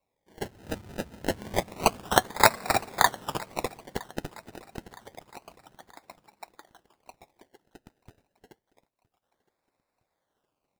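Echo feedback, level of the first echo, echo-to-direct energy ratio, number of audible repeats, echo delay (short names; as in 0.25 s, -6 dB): 50%, -22.5 dB, -21.5 dB, 3, 0.964 s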